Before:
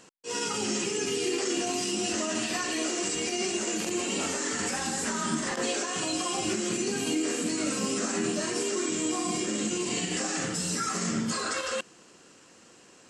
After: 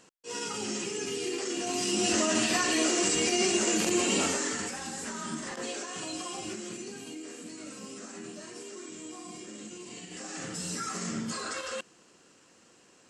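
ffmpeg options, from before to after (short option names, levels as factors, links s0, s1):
-af "volume=4.22,afade=t=in:st=1.58:d=0.56:silence=0.398107,afade=t=out:st=4.15:d=0.58:silence=0.298538,afade=t=out:st=6.21:d=0.9:silence=0.446684,afade=t=in:st=10.09:d=0.56:silence=0.354813"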